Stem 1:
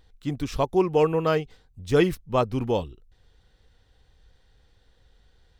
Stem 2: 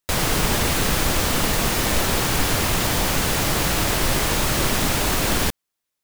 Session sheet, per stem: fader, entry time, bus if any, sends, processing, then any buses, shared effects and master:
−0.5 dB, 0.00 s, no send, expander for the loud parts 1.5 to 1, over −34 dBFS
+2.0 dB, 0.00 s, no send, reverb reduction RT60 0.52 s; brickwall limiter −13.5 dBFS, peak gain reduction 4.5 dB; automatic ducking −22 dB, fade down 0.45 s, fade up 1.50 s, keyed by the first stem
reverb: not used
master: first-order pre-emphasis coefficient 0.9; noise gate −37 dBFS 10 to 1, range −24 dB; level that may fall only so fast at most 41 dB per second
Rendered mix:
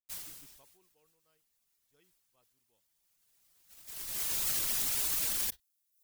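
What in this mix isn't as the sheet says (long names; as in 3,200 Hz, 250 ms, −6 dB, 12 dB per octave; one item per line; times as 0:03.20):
stem 1 −0.5 dB → −11.0 dB
stem 2 +2.0 dB → −4.5 dB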